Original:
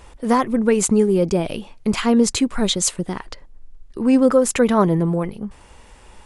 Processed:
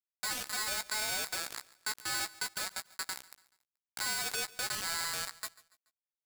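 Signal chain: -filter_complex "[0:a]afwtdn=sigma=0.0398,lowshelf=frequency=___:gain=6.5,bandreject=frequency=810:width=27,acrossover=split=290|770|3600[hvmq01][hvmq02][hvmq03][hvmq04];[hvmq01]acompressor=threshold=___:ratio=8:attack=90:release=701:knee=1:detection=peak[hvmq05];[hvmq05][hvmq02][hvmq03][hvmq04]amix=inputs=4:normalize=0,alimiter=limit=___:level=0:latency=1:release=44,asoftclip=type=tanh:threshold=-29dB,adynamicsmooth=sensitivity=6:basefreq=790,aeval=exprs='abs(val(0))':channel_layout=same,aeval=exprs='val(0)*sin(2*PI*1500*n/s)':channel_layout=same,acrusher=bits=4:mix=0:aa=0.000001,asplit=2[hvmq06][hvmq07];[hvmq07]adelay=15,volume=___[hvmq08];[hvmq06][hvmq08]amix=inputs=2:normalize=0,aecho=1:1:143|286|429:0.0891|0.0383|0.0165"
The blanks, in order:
260, -29dB, -12dB, -9dB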